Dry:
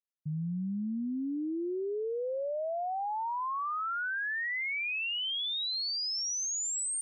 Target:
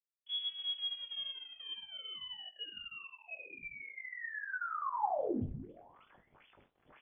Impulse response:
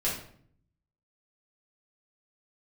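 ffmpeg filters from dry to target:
-filter_complex "[0:a]acrossover=split=200|2300[link_01][link_02][link_03];[link_01]acompressor=threshold=-36dB:ratio=4[link_04];[link_02]acompressor=threshold=-43dB:ratio=4[link_05];[link_03]acompressor=threshold=-37dB:ratio=4[link_06];[link_04][link_05][link_06]amix=inputs=3:normalize=0,bandreject=frequency=60:width_type=h:width=6,bandreject=frequency=120:width_type=h:width=6,bandreject=frequency=180:width_type=h:width=6,bandreject=frequency=240:width_type=h:width=6,bandreject=frequency=300:width_type=h:width=6,bandreject=frequency=360:width_type=h:width=6[link_07];[1:a]atrim=start_sample=2205[link_08];[link_07][link_08]afir=irnorm=-1:irlink=0,aeval=exprs='sgn(val(0))*max(abs(val(0))-0.00794,0)':channel_layout=same,lowpass=frequency=3000:width_type=q:width=0.5098,lowpass=frequency=3000:width_type=q:width=0.6013,lowpass=frequency=3000:width_type=q:width=0.9,lowpass=frequency=3000:width_type=q:width=2.563,afreqshift=-3500,tiltshelf=frequency=880:gain=8,aecho=1:1:20|68:0.316|0.126,areverse,acompressor=mode=upward:threshold=-48dB:ratio=2.5,areverse,volume=-5.5dB"

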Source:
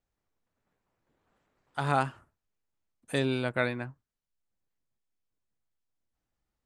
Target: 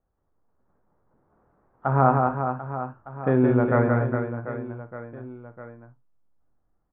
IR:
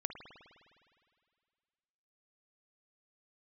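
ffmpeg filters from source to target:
-filter_complex "[0:a]lowpass=frequency=1400:width=0.5412,lowpass=frequency=1400:width=1.3066,asetrate=42336,aresample=44100,asplit=2[link_01][link_02];[link_02]adelay=24,volume=-12.5dB[link_03];[link_01][link_03]amix=inputs=2:normalize=0,aecho=1:1:170|408|741.2|1208|1861:0.631|0.398|0.251|0.158|0.1,asplit=2[link_04][link_05];[1:a]atrim=start_sample=2205,atrim=end_sample=3087,lowpass=6600[link_06];[link_05][link_06]afir=irnorm=-1:irlink=0,volume=5dB[link_07];[link_04][link_07]amix=inputs=2:normalize=0"

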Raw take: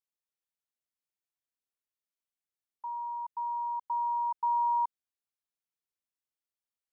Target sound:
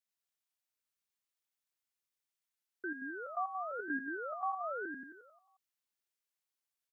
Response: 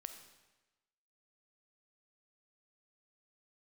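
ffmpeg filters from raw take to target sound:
-filter_complex "[0:a]highpass=frequency=880:poles=1,alimiter=level_in=8dB:limit=-24dB:level=0:latency=1,volume=-8dB,asettb=1/sr,asplit=3[link_01][link_02][link_03];[link_01]atrim=end=3.704[link_04];[link_02]atrim=start=3.7:end=4.46,asetpts=PTS-STARTPTS,afade=type=in:duration=0.004:curve=qsin,afade=type=out:start_time=0.756:duration=0.004:curve=qsin,asplit=2[link_05][link_06];[link_06]adelay=13,volume=-5dB[link_07];[link_05][link_07]amix=inputs=2:normalize=0,atrim=end_sample=33516[link_08];[link_03]atrim=start=4.456[link_09];[link_04][link_08]acrossfade=duration=0.004:curve1=hsin:curve2=qsin[link_10];[link_10][link_09]acrossfade=duration=0.004:curve1=qsin:curve2=hsin,aecho=1:1:89|178|267|356|445|534|623|712:0.668|0.381|0.217|0.124|0.0706|0.0402|0.0229|0.0131,aeval=exprs='val(0)*sin(2*PI*430*n/s+430*0.6/1*sin(2*PI*1*n/s))':channel_layout=same,volume=4dB"

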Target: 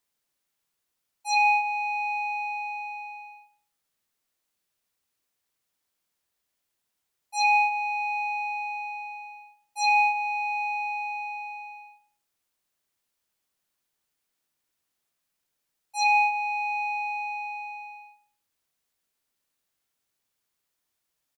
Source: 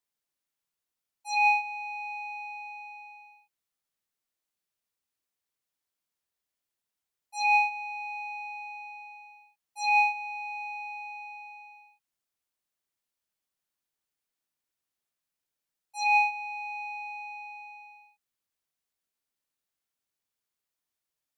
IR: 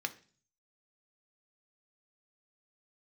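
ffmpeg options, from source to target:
-filter_complex "[0:a]acompressor=threshold=-27dB:ratio=3,asplit=2[link_01][link_02];[link_02]adelay=101,lowpass=frequency=2000:poles=1,volume=-13.5dB,asplit=2[link_03][link_04];[link_04]adelay=101,lowpass=frequency=2000:poles=1,volume=0.34,asplit=2[link_05][link_06];[link_06]adelay=101,lowpass=frequency=2000:poles=1,volume=0.34[link_07];[link_03][link_05][link_07]amix=inputs=3:normalize=0[link_08];[link_01][link_08]amix=inputs=2:normalize=0,volume=7dB"

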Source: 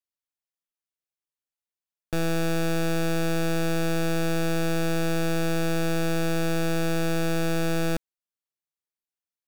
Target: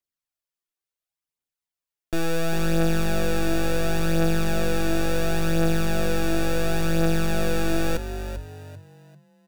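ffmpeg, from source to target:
ffmpeg -i in.wav -filter_complex "[0:a]aphaser=in_gain=1:out_gain=1:delay=3:decay=0.47:speed=0.71:type=triangular,asplit=5[link_01][link_02][link_03][link_04][link_05];[link_02]adelay=393,afreqshift=48,volume=-10.5dB[link_06];[link_03]adelay=786,afreqshift=96,volume=-20.1dB[link_07];[link_04]adelay=1179,afreqshift=144,volume=-29.8dB[link_08];[link_05]adelay=1572,afreqshift=192,volume=-39.4dB[link_09];[link_01][link_06][link_07][link_08][link_09]amix=inputs=5:normalize=0" out.wav

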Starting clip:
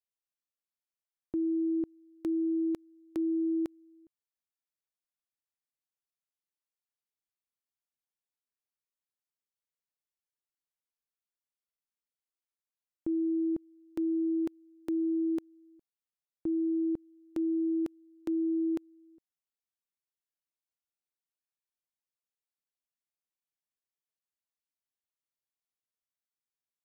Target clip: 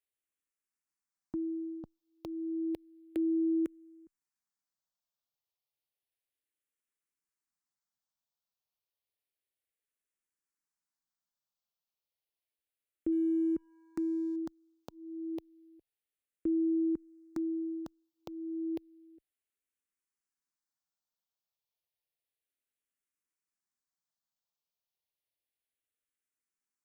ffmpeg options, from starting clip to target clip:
ffmpeg -i in.wav -filter_complex "[0:a]asplit=2[link_01][link_02];[link_02]acompressor=threshold=-38dB:ratio=6,volume=-3dB[link_03];[link_01][link_03]amix=inputs=2:normalize=0,asettb=1/sr,asplit=3[link_04][link_05][link_06];[link_04]atrim=end=13.124[link_07];[link_05]atrim=start=13.12:end=14.36,asetpts=PTS-STARTPTS,afade=type=in:duration=0.004:curve=qsin,afade=type=out:start_time=1.236:duration=0.004:curve=qsin,aeval=exprs='sgn(val(0))*max(abs(val(0))-0.00112,0)':channel_layout=same[link_08];[link_06]atrim=start=14.356[link_09];[link_07][link_08]acrossfade=duration=0.004:curve1=hsin:curve2=qsin[link_10];[link_10][link_09]acrossfade=duration=0.004:curve1=qsin:curve2=hsin,asplit=2[link_11][link_12];[link_12]afreqshift=-0.31[link_13];[link_11][link_13]amix=inputs=2:normalize=1,volume=-1.5dB" out.wav

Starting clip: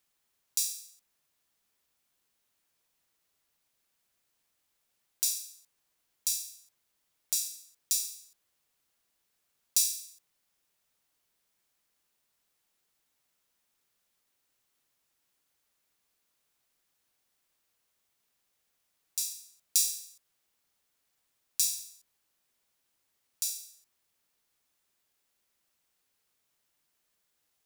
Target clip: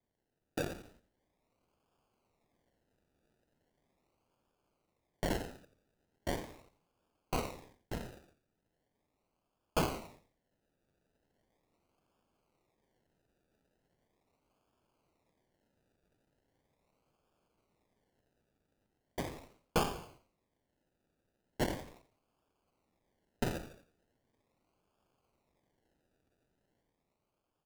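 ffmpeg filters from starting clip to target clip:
ffmpeg -i in.wav -filter_complex "[0:a]asettb=1/sr,asplit=3[link_01][link_02][link_03];[link_01]atrim=end=5.304[link_04];[link_02]atrim=start=5.3:end=7.78,asetpts=PTS-STARTPTS,afade=type=in:duration=0.004:curve=qsin,afade=type=out:start_time=2.476:duration=0.004:curve=qsin,highshelf=frequency=7200:gain=11[link_05];[link_03]atrim=start=7.776[link_06];[link_04][link_05]acrossfade=duration=0.004:curve1=hsin:curve2=qsin[link_07];[link_07][link_06]acrossfade=duration=0.004:curve1=qsin:curve2=hsin,dynaudnorm=framelen=220:gausssize=9:maxgain=7dB,acrusher=samples=32:mix=1:aa=0.000001:lfo=1:lforange=19.2:lforate=0.39,asplit=4[link_08][link_09][link_10][link_11];[link_09]adelay=86,afreqshift=-53,volume=-13.5dB[link_12];[link_10]adelay=172,afreqshift=-106,volume=-23.4dB[link_13];[link_11]adelay=258,afreqshift=-159,volume=-33.3dB[link_14];[link_08][link_12][link_13][link_14]amix=inputs=4:normalize=0,volume=-8dB" out.wav

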